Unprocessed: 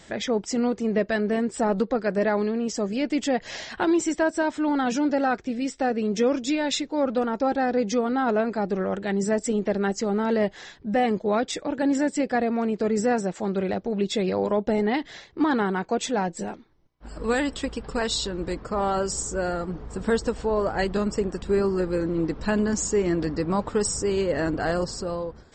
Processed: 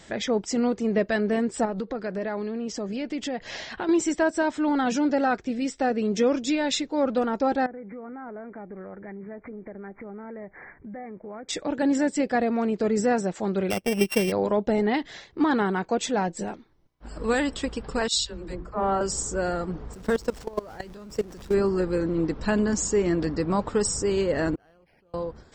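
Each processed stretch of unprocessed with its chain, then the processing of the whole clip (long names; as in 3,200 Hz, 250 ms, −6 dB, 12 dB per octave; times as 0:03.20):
0:01.65–0:03.89: low-pass filter 5,900 Hz + downward compressor 3 to 1, threshold −28 dBFS
0:07.66–0:11.49: variable-slope delta modulation 64 kbit/s + linear-phase brick-wall low-pass 2,400 Hz + downward compressor 4 to 1, threshold −39 dBFS
0:13.70–0:14.32: samples sorted by size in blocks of 16 samples + transient designer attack +6 dB, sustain −11 dB
0:18.08–0:19.01: mains-hum notches 60/120/180/240/300/360/420/480 Hz + all-pass dispersion lows, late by 79 ms, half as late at 310 Hz + multiband upward and downward expander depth 100%
0:19.93–0:21.54: converter with a step at zero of −32.5 dBFS + parametric band 5,600 Hz +4 dB 0.42 octaves + output level in coarse steps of 21 dB
0:24.55–0:25.14: high-shelf EQ 3,700 Hz +11.5 dB + gate with flip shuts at −27 dBFS, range −34 dB + linearly interpolated sample-rate reduction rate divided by 6×
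whole clip: no processing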